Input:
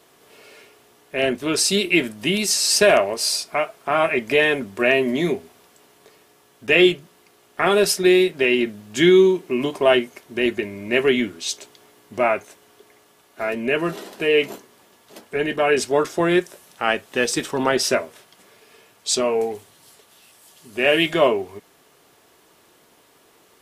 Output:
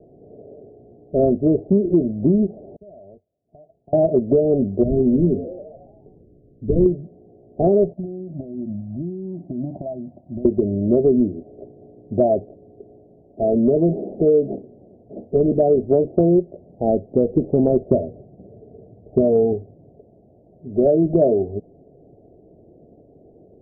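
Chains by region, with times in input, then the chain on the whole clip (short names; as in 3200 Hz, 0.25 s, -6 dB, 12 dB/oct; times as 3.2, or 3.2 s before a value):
2.76–3.93 passive tone stack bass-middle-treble 5-5-5 + compressor 4:1, threshold -46 dBFS + three-band expander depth 40%
4.83–6.86 CVSD 16 kbps + Gaussian blur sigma 19 samples + frequency-shifting echo 0.14 s, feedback 60%, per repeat +95 Hz, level -16 dB
7.93–10.45 HPF 83 Hz + compressor 12:1, threshold -27 dBFS + fixed phaser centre 1600 Hz, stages 6
17.91–19.54 HPF 56 Hz + low shelf 140 Hz +11 dB
whole clip: steep low-pass 700 Hz 72 dB/oct; low shelf 240 Hz +11.5 dB; compressor 6:1, threshold -19 dBFS; gain +6.5 dB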